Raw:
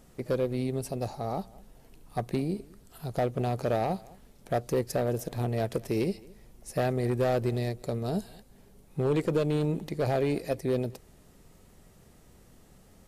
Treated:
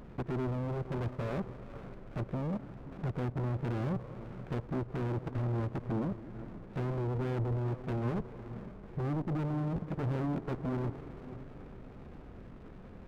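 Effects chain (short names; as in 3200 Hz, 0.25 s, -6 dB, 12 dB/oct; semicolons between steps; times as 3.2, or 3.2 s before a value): treble ducked by the level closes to 400 Hz, closed at -25.5 dBFS; low shelf 350 Hz -5.5 dB; level quantiser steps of 21 dB; sine folder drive 12 dB, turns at -29 dBFS; formant shift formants -5 st; brick-wall FIR low-pass 2100 Hz; diffused feedback echo 0.493 s, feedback 46%, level -12.5 dB; running maximum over 33 samples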